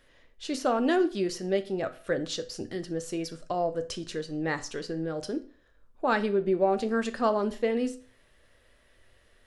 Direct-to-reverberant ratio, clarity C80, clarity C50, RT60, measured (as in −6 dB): 9.0 dB, 20.0 dB, 16.0 dB, 0.40 s